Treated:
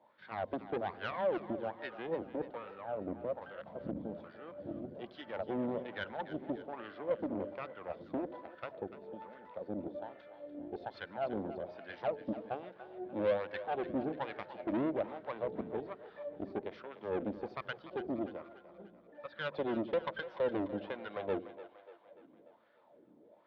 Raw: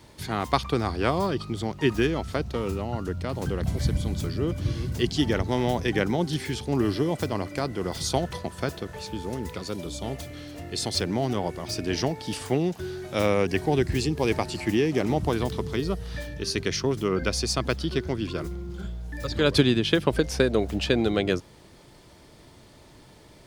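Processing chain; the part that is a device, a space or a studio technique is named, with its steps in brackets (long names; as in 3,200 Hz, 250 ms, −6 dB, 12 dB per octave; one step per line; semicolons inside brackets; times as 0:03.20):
0:18.82–0:20.54: high-pass filter 220 Hz 6 dB per octave
parametric band 280 Hz +3.5 dB 3 octaves
wah-wah guitar rig (LFO wah 1.2 Hz 290–1,500 Hz, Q 4.4; tube saturation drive 31 dB, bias 0.8; loudspeaker in its box 84–3,800 Hz, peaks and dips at 120 Hz −4 dB, 210 Hz +7 dB, 390 Hz −4 dB, 560 Hz +9 dB, 1,200 Hz −4 dB, 3,600 Hz +5 dB)
echo with a time of its own for lows and highs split 440 Hz, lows 81 ms, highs 293 ms, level −13 dB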